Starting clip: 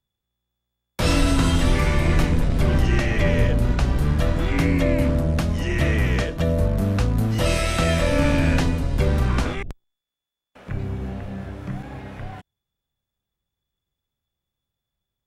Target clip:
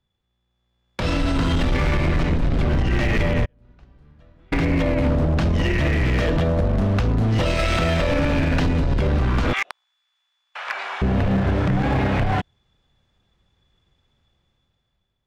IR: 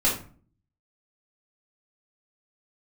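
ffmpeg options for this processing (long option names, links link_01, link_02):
-filter_complex "[0:a]lowpass=4300,asplit=3[link_01][link_02][link_03];[link_01]afade=type=out:start_time=3.44:duration=0.02[link_04];[link_02]agate=range=-49dB:threshold=-10dB:ratio=16:detection=peak,afade=type=in:start_time=3.44:duration=0.02,afade=type=out:start_time=4.52:duration=0.02[link_05];[link_03]afade=type=in:start_time=4.52:duration=0.02[link_06];[link_04][link_05][link_06]amix=inputs=3:normalize=0,asettb=1/sr,asplit=3[link_07][link_08][link_09];[link_07]atrim=end=9.534[link_10];[link_08]atrim=start=9.53:end=11.02,asetpts=PTS-STARTPTS,afade=type=in:duration=0.004:curve=qsin,afade=type=out:start_time=1.486:duration=0.004:curve=qsin,highpass=frequency=890:width=0.5412,highpass=frequency=890:width=1.3066[link_11];[link_09]atrim=start=11.016[link_12];[link_10][link_11]acrossfade=duration=0.004:curve1=hsin:curve2=qsin[link_13];[link_13][link_12]acrossfade=duration=0.004:curve1=qsin:curve2=hsin,acompressor=threshold=-28dB:ratio=12,alimiter=level_in=4dB:limit=-24dB:level=0:latency=1:release=72,volume=-4dB,dynaudnorm=framelen=290:gausssize=7:maxgain=11.5dB,asoftclip=type=hard:threshold=-22.5dB,volume=7dB"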